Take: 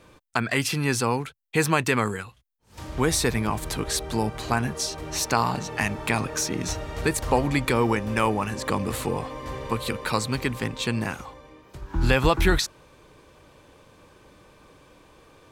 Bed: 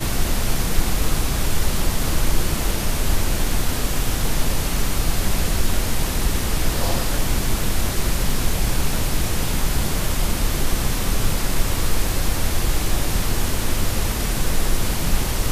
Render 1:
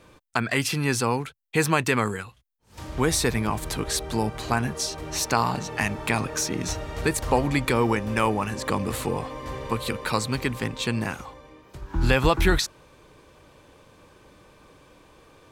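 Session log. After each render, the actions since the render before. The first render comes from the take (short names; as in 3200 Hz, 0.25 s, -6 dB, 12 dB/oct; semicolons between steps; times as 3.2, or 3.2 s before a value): nothing audible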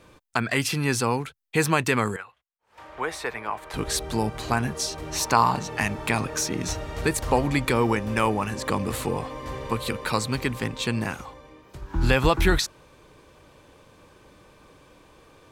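2.16–3.74 three-band isolator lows -21 dB, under 480 Hz, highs -16 dB, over 2700 Hz; 5.19–5.59 bell 1000 Hz +7 dB 0.52 oct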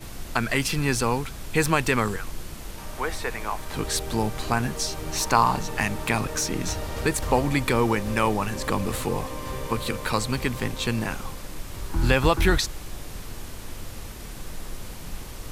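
add bed -16 dB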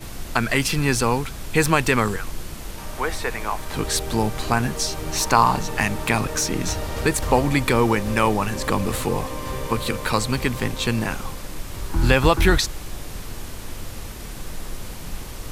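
gain +3.5 dB; limiter -1 dBFS, peak gain reduction 1 dB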